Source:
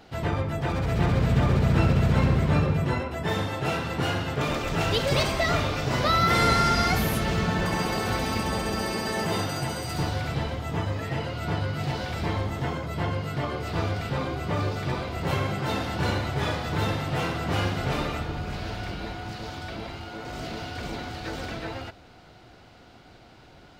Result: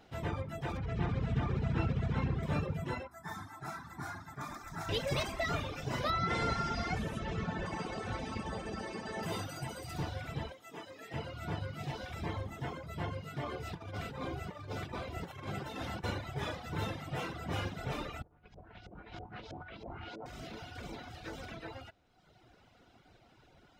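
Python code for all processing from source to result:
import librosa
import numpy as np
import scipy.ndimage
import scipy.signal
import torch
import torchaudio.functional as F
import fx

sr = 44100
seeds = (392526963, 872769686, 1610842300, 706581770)

y = fx.chain(x, sr, fx.air_absorb(metres=100.0),
    fx.notch(hz=570.0, q=6.3), at=(0.77, 2.43))
y = fx.chain(y, sr, fx.low_shelf(hz=160.0, db=-10.5),
    fx.fixed_phaser(hz=1200.0, stages=4), at=(3.07, 4.89))
y = fx.chain(y, sr, fx.lowpass(hz=8500.0, slope=24),
    fx.high_shelf(hz=3200.0, db=-6.0), at=(6.1, 9.23))
y = fx.chain(y, sr, fx.highpass(hz=320.0, slope=12),
    fx.peak_eq(hz=970.0, db=-5.0, octaves=2.6), at=(10.52, 11.14))
y = fx.chain(y, sr, fx.over_compress(threshold_db=-29.0, ratio=-0.5),
    fx.echo_single(ms=491, db=-11.0), at=(13.44, 16.04))
y = fx.chain(y, sr, fx.filter_lfo_lowpass(shape='saw_up', hz=3.1, low_hz=490.0, high_hz=6300.0, q=1.3),
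    fx.over_compress(threshold_db=-37.0, ratio=-0.5), at=(18.22, 20.26))
y = fx.dereverb_blind(y, sr, rt60_s=1.2)
y = fx.notch(y, sr, hz=4500.0, q=10.0)
y = F.gain(torch.from_numpy(y), -8.5).numpy()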